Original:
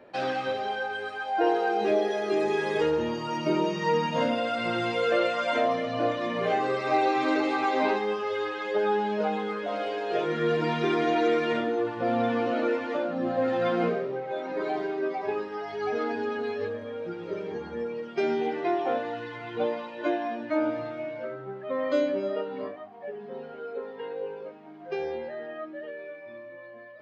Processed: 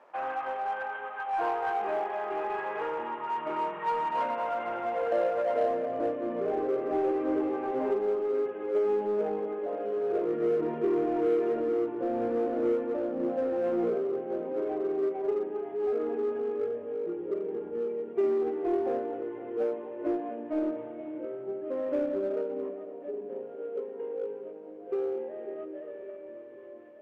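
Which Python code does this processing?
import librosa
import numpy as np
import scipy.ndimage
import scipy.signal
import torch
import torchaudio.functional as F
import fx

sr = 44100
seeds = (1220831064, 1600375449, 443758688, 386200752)

p1 = fx.cvsd(x, sr, bps=16000)
p2 = p1 + fx.echo_split(p1, sr, split_hz=450.0, low_ms=549, high_ms=257, feedback_pct=52, wet_db=-11, dry=0)
p3 = fx.quant_dither(p2, sr, seeds[0], bits=10, dither='none')
p4 = fx.filter_sweep_bandpass(p3, sr, from_hz=1000.0, to_hz=390.0, start_s=4.28, end_s=6.21, q=2.4)
p5 = np.clip(p4, -10.0 ** (-32.5 / 20.0), 10.0 ** (-32.5 / 20.0))
y = p4 + F.gain(torch.from_numpy(p5), -5.5).numpy()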